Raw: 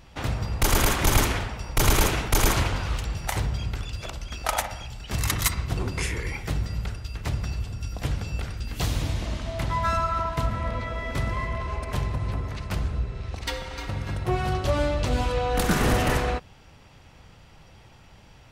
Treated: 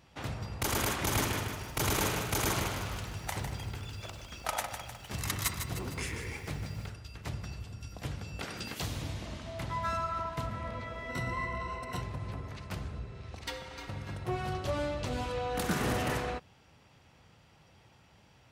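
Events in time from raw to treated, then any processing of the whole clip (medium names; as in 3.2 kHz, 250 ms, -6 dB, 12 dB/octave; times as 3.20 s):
0.99–6.90 s: bit-crushed delay 153 ms, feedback 55%, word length 8-bit, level -7.5 dB
8.39–8.80 s: spectral peaks clipped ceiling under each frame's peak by 20 dB
11.09–12.02 s: rippled EQ curve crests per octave 2, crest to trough 13 dB
whole clip: high-pass 82 Hz 12 dB/octave; trim -8 dB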